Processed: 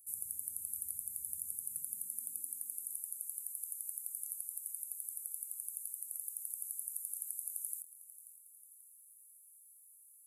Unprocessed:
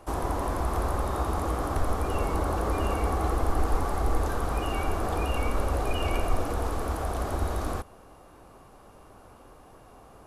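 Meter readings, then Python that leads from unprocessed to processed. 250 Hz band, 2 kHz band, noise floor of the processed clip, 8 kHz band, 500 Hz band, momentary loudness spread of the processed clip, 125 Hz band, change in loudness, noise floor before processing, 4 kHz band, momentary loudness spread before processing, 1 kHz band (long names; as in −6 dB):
below −40 dB, below −40 dB, −61 dBFS, +6.0 dB, below −40 dB, 18 LU, below −40 dB, −10.5 dB, −52 dBFS, below −35 dB, 3 LU, below −40 dB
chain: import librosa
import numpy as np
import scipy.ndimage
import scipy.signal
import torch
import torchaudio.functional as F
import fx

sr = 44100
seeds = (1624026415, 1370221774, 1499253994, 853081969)

p1 = np.diff(x, prepend=0.0)
p2 = fx.filter_sweep_highpass(p1, sr, from_hz=95.0, to_hz=1000.0, start_s=1.46, end_s=3.65, q=1.9)
p3 = fx.rider(p2, sr, range_db=10, speed_s=0.5)
p4 = scipy.signal.sosfilt(scipy.signal.cheby2(4, 40, [450.0, 5100.0], 'bandstop', fs=sr, output='sos'), p3)
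p5 = fx.tone_stack(p4, sr, knobs='5-5-5')
p6 = p5 + fx.echo_feedback(p5, sr, ms=536, feedback_pct=50, wet_db=-16, dry=0)
y = F.gain(torch.from_numpy(p6), 11.5).numpy()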